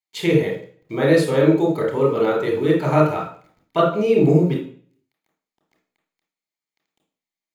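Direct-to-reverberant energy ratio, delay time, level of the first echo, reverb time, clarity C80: 0.5 dB, no echo, no echo, 0.45 s, 10.0 dB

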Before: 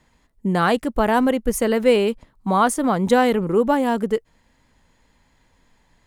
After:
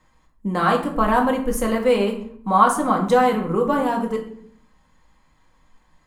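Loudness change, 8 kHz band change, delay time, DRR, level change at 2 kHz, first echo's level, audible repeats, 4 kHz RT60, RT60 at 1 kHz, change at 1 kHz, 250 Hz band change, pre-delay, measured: -0.5 dB, -3.0 dB, no echo, 0.5 dB, -1.0 dB, no echo, no echo, 0.40 s, 0.60 s, +2.5 dB, -2.0 dB, 4 ms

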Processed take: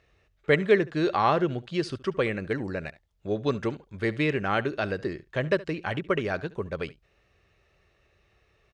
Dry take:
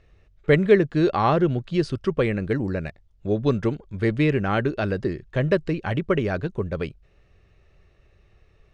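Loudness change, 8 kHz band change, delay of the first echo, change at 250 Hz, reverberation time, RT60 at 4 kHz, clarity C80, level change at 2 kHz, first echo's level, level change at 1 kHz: -4.5 dB, no reading, 71 ms, -6.0 dB, no reverb, no reverb, no reverb, -0.5 dB, -19.5 dB, -1.5 dB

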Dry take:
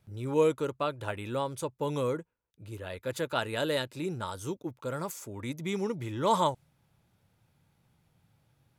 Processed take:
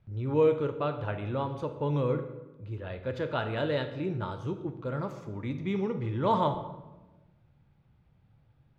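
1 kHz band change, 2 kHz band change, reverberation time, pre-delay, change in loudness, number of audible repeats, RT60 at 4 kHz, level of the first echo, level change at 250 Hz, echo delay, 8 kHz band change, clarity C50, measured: -0.5 dB, -1.5 dB, 1.1 s, 12 ms, +1.0 dB, no echo, 0.75 s, no echo, +2.0 dB, no echo, under -20 dB, 10.0 dB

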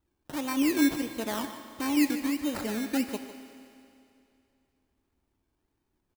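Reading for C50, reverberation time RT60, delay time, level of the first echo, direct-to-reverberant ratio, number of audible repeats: 7.5 dB, 2.6 s, 151 ms, -13.5 dB, 6.5 dB, 1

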